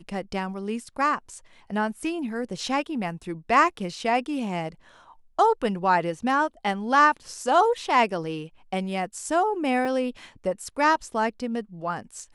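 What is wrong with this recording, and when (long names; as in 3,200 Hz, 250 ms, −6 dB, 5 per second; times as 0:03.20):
0:09.85: drop-out 2.9 ms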